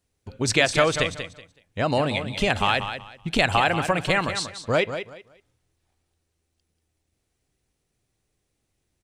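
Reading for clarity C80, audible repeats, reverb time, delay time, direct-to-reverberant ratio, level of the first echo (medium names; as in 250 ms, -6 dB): no reverb, 2, no reverb, 187 ms, no reverb, -9.5 dB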